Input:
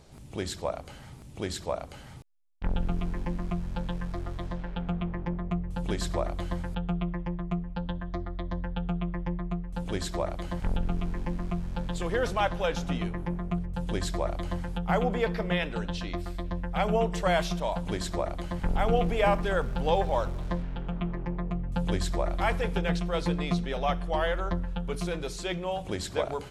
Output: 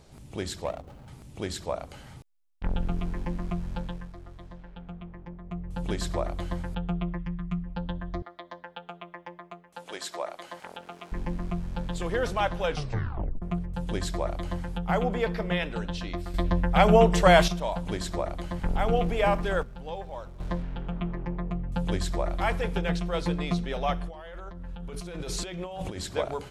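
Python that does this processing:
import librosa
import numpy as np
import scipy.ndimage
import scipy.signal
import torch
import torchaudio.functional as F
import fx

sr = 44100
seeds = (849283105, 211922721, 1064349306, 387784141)

y = fx.median_filter(x, sr, points=25, at=(0.64, 1.08))
y = fx.band_shelf(y, sr, hz=560.0, db=-12.0, octaves=1.7, at=(7.17, 7.65), fade=0.02)
y = fx.highpass(y, sr, hz=570.0, slope=12, at=(8.22, 11.12))
y = fx.over_compress(y, sr, threshold_db=-38.0, ratio=-1.0, at=(24.07, 25.99), fade=0.02)
y = fx.edit(y, sr, fx.fade_down_up(start_s=3.74, length_s=2.08, db=-10.5, fade_s=0.39),
    fx.tape_stop(start_s=12.69, length_s=0.73),
    fx.clip_gain(start_s=16.34, length_s=1.14, db=8.0),
    fx.clip_gain(start_s=19.63, length_s=0.77, db=-11.5), tone=tone)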